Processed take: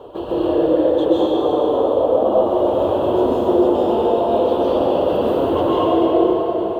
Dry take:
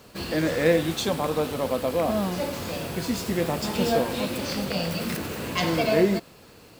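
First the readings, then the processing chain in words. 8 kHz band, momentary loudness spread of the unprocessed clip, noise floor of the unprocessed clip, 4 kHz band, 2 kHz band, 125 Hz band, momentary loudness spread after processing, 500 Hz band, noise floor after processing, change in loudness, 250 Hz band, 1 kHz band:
below −15 dB, 8 LU, −50 dBFS, −2.5 dB, can't be measured, −2.0 dB, 2 LU, +11.0 dB, −24 dBFS, +8.5 dB, +8.0 dB, +10.5 dB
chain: reverb reduction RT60 0.72 s
drawn EQ curve 110 Hz 0 dB, 190 Hz −10 dB, 350 Hz +14 dB, 560 Hz +12 dB, 940 Hz +11 dB, 2,200 Hz −20 dB, 3,200 Hz +2 dB, 4,800 Hz −24 dB, 11,000 Hz −20 dB
brickwall limiter −8 dBFS, peak gain reduction 9.5 dB
downward compressor 6 to 1, threshold −29 dBFS, peak gain reduction 16.5 dB
dense smooth reverb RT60 4.6 s, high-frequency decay 0.7×, pre-delay 115 ms, DRR −10 dB
level +4.5 dB

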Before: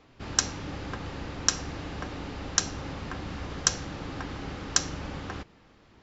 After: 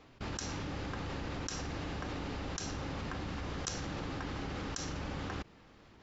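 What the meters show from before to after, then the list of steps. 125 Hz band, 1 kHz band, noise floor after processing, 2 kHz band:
−3.0 dB, −4.5 dB, −59 dBFS, −6.5 dB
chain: output level in coarse steps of 20 dB
level +1 dB

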